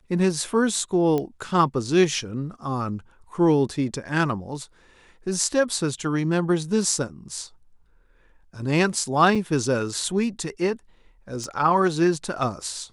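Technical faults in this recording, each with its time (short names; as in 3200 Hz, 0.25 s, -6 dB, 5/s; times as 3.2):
1.18 pop -14 dBFS
9.35–9.36 gap 5.6 ms
11.44 pop -22 dBFS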